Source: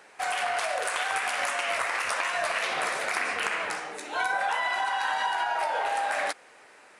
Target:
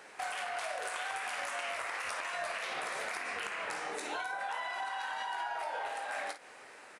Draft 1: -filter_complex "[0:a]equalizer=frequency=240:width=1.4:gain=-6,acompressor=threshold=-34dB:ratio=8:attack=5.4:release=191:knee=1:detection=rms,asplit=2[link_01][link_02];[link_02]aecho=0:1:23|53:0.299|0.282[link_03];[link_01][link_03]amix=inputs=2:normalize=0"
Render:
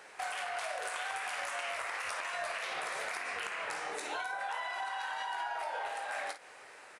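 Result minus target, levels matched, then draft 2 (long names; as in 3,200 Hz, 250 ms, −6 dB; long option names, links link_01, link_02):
250 Hz band −3.5 dB
-filter_complex "[0:a]acompressor=threshold=-34dB:ratio=8:attack=5.4:release=191:knee=1:detection=rms,asplit=2[link_01][link_02];[link_02]aecho=0:1:23|53:0.299|0.282[link_03];[link_01][link_03]amix=inputs=2:normalize=0"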